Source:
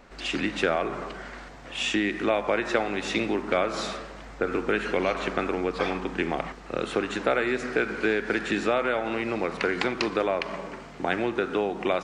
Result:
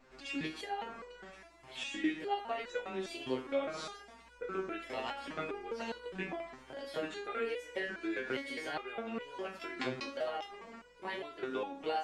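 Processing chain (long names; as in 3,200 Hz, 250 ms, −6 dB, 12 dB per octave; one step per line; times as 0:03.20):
pitch shifter gated in a rhythm +3.5 semitones, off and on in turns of 438 ms
step-sequenced resonator 4.9 Hz 130–490 Hz
level +1 dB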